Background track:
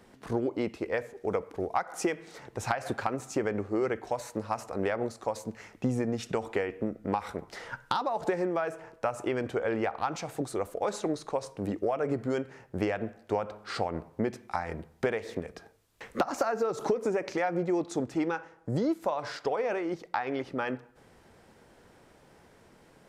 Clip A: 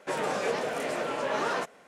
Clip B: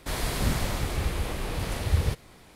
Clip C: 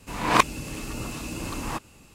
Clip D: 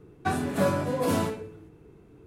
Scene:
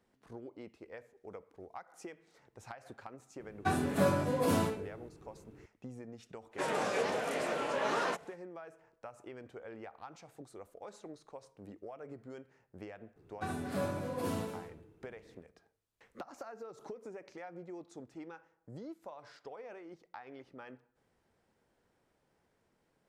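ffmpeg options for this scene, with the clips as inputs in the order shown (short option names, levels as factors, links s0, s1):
-filter_complex "[4:a]asplit=2[s0][s1];[0:a]volume=0.126[s2];[1:a]aresample=32000,aresample=44100[s3];[s1]aecho=1:1:72.89|233.2:0.501|0.282[s4];[s0]atrim=end=2.26,asetpts=PTS-STARTPTS,volume=0.631,afade=t=in:d=0.004:c=hsin,afade=t=out:st=2.256:d=0.004:c=hsin,adelay=3400[s5];[s3]atrim=end=1.87,asetpts=PTS-STARTPTS,volume=0.668,afade=t=in:d=0.05,afade=t=out:st=1.82:d=0.05,adelay=6510[s6];[s4]atrim=end=2.26,asetpts=PTS-STARTPTS,volume=0.251,afade=t=in:d=0.004:c=hsin,afade=t=out:st=2.256:d=0.004:c=hsin,adelay=580356S[s7];[s2][s5][s6][s7]amix=inputs=4:normalize=0"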